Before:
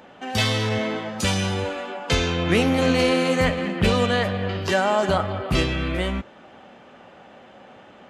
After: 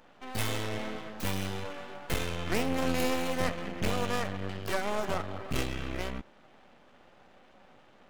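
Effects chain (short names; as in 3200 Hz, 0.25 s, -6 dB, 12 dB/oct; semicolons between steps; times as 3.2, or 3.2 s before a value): tracing distortion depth 0.21 ms; half-wave rectifier; gain -7.5 dB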